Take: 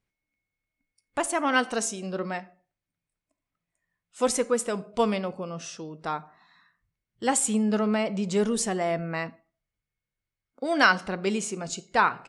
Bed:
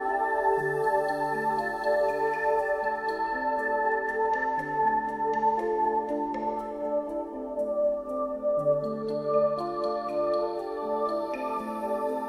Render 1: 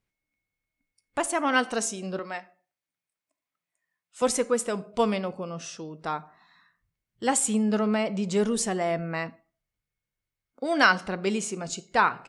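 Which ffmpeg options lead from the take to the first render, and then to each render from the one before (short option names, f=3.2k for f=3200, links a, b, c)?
-filter_complex "[0:a]asettb=1/sr,asplit=3[a][b][c];[a]atrim=end=2.194[d];[b]atrim=start=2.19:end=4.22,asetpts=PTS-STARTPTS,afade=t=in:d=0.004:c=qsin,afade=t=out:st=2.026:d=0.004:c=qsin,highpass=f=630:p=1[e];[c]atrim=start=4.216[f];[d][e]acrossfade=d=0.004:c1=hsin:c2=qsin[g];[g][f]acrossfade=d=0.004:c1=qsin:c2=hsin"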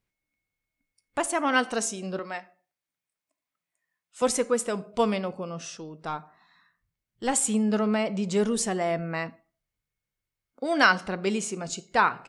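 -filter_complex "[0:a]asettb=1/sr,asplit=3[a][b][c];[a]atrim=end=5.774[d];[b]atrim=start=5.77:end=7.34,asetpts=PTS-STARTPTS,afade=t=in:d=0.004:c=qsin,afade=t=out:st=1.566:d=0.004:c=qsin,aeval=exprs='(tanh(5.62*val(0)+0.45)-tanh(0.45))/5.62':c=same[e];[c]atrim=start=7.336[f];[d][e]acrossfade=d=0.004:c1=hsin:c2=qsin[g];[g][f]acrossfade=d=0.004:c1=qsin:c2=hsin"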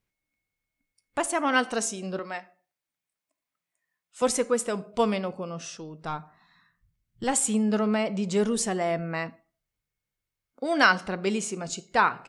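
-filter_complex "[0:a]asettb=1/sr,asplit=3[a][b][c];[a]atrim=end=5.734[d];[b]atrim=start=5.73:end=7.24,asetpts=PTS-STARTPTS,afade=t=in:d=0.004:c=qsin,afade=t=out:st=1.506:d=0.004:c=qsin,asubboost=boost=9:cutoff=220[e];[c]atrim=start=7.236[f];[d][e]acrossfade=d=0.004:c1=hsin:c2=qsin[g];[g][f]acrossfade=d=0.004:c1=qsin:c2=hsin"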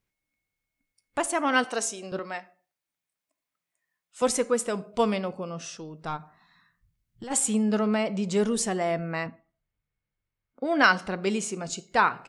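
-filter_complex "[0:a]asettb=1/sr,asplit=3[a][b][c];[a]atrim=end=1.644[d];[b]atrim=start=1.64:end=2.12,asetpts=PTS-STARTPTS,afade=t=in:d=0.004:c=qsin,afade=t=out:st=0.476:d=0.004:c=qsin,highpass=310[e];[c]atrim=start=2.116[f];[d][e]acrossfade=d=0.004:c1=hsin:c2=qsin[g];[g][f]acrossfade=d=0.004:c1=qsin:c2=hsin,asplit=3[h][i][j];[h]afade=t=out:st=6.16:d=0.02[k];[i]acompressor=threshold=-35dB:ratio=6:attack=3.2:release=140:knee=1:detection=peak,afade=t=in:st=6.16:d=0.02,afade=t=out:st=7.3:d=0.02[l];[j]afade=t=in:st=7.3:d=0.02[m];[k][l][m]amix=inputs=3:normalize=0,asettb=1/sr,asplit=3[n][o][p];[n]atrim=end=9.264[q];[o]atrim=start=9.26:end=10.84,asetpts=PTS-STARTPTS,afade=t=in:d=0.004:c=qsin,afade=t=out:st=1.576:d=0.004:c=qsin,bass=f=250:g=4,treble=f=4k:g=-14[r];[p]atrim=start=10.836[s];[q][r]acrossfade=d=0.004:c1=hsin:c2=qsin[t];[t][s]acrossfade=d=0.004:c1=qsin:c2=hsin"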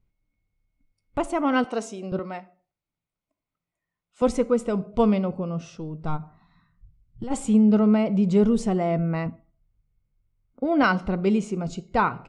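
-af "aemphasis=mode=reproduction:type=riaa,bandreject=f=1.7k:w=5.2"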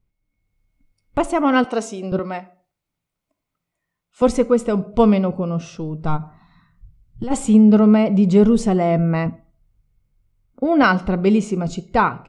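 -af "dynaudnorm=f=170:g=5:m=7dB"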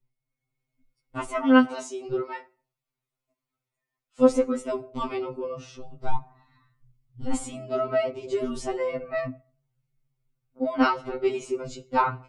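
-af "flanger=delay=4.5:depth=2.6:regen=-65:speed=1.3:shape=sinusoidal,afftfilt=real='re*2.45*eq(mod(b,6),0)':imag='im*2.45*eq(mod(b,6),0)':win_size=2048:overlap=0.75"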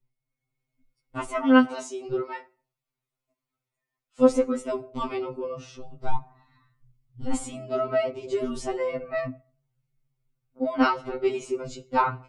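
-af anull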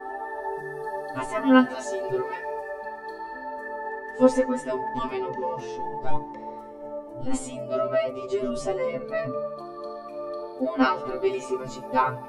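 -filter_complex "[1:a]volume=-7dB[a];[0:a][a]amix=inputs=2:normalize=0"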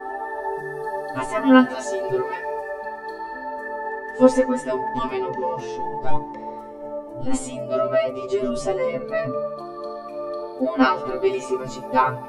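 -af "volume=4dB,alimiter=limit=-2dB:level=0:latency=1"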